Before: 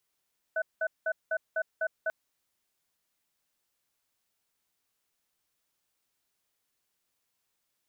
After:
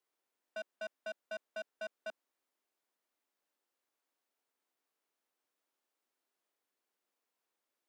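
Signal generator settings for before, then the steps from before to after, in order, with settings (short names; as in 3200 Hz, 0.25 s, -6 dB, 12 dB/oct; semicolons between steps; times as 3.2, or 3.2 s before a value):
cadence 642 Hz, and 1500 Hz, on 0.06 s, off 0.19 s, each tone -29 dBFS 1.54 s
high shelf 2000 Hz -11.5 dB; soft clip -37 dBFS; HPF 260 Hz 24 dB/oct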